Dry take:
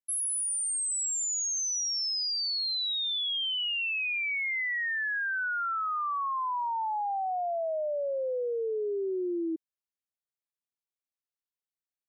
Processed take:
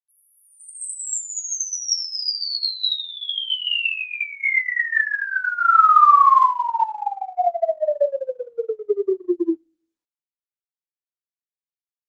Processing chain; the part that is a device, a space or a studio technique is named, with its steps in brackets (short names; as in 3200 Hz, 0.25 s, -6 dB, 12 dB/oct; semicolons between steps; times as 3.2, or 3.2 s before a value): bell 1200 Hz +5 dB 0.37 oct; speakerphone in a meeting room (reverb RT60 0.55 s, pre-delay 35 ms, DRR 2.5 dB; AGC gain up to 11.5 dB; gate -15 dBFS, range -34 dB; gain +1.5 dB; Opus 20 kbps 48000 Hz)